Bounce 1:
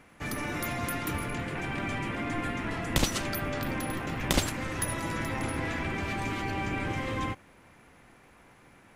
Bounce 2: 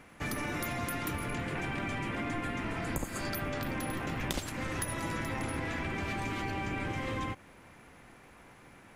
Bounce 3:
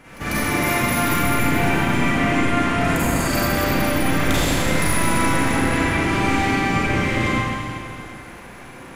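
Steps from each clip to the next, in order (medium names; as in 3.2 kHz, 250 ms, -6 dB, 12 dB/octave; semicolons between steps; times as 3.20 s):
spectral replace 2.66–3.27 s, 1.4–6.3 kHz both; compression 6:1, threshold -33 dBFS, peak gain reduction 13.5 dB; trim +1.5 dB
reverse echo 146 ms -18.5 dB; Schroeder reverb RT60 2.4 s, combs from 33 ms, DRR -10 dB; trim +5.5 dB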